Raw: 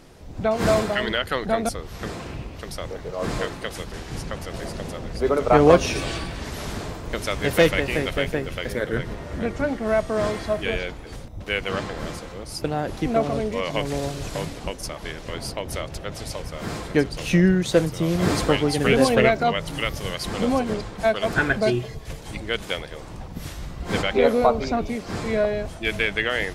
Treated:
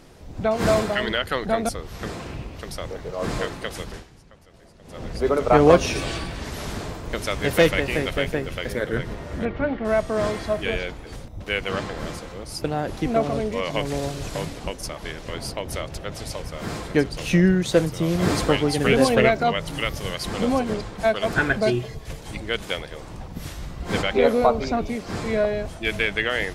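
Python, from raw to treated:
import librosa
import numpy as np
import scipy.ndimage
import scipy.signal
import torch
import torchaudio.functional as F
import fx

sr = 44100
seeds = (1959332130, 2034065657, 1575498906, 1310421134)

y = fx.lowpass(x, sr, hz=3500.0, slope=24, at=(9.45, 9.85))
y = fx.edit(y, sr, fx.fade_down_up(start_s=3.92, length_s=1.1, db=-19.5, fade_s=0.24, curve='qua'), tone=tone)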